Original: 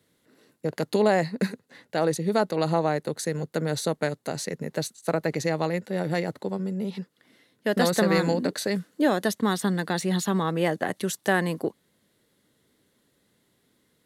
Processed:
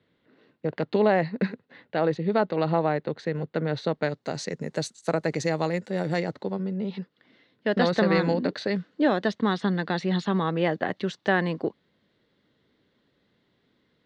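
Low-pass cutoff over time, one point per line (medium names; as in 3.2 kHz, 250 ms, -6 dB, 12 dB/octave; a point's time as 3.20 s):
low-pass 24 dB/octave
3.77 s 3.6 kHz
4.66 s 8 kHz
6.08 s 8 kHz
6.57 s 4.3 kHz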